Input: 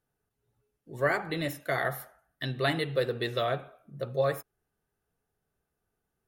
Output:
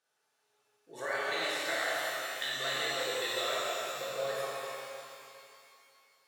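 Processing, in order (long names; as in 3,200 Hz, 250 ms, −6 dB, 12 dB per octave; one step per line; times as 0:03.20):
high-shelf EQ 3,000 Hz +11.5 dB
downward compressor 6 to 1, threshold −36 dBFS, peak gain reduction 15 dB
band-pass filter 560–6,000 Hz
delay that swaps between a low-pass and a high-pass 149 ms, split 1,700 Hz, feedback 54%, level −4.5 dB
reverb with rising layers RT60 2.5 s, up +12 semitones, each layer −8 dB, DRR −7 dB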